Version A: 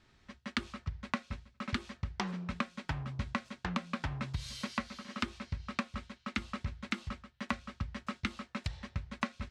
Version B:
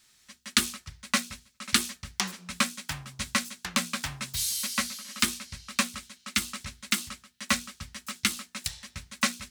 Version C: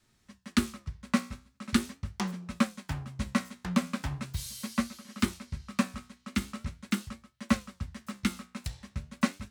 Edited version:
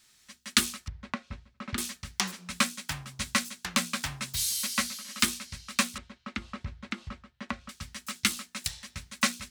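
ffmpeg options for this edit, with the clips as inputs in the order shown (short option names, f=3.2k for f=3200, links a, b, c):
-filter_complex "[0:a]asplit=2[a][b];[1:a]asplit=3[c][d][e];[c]atrim=end=0.882[f];[a]atrim=start=0.878:end=1.782[g];[d]atrim=start=1.778:end=5.982[h];[b]atrim=start=5.978:end=7.692[i];[e]atrim=start=7.688[j];[f][g]acrossfade=d=0.004:c1=hsin:c2=hsin[k];[k][h]acrossfade=d=0.004:c1=hsin:c2=hsin[l];[l][i]acrossfade=d=0.004:c1=hsin:c2=hsin[m];[m][j]acrossfade=d=0.004:c1=hsin:c2=hsin"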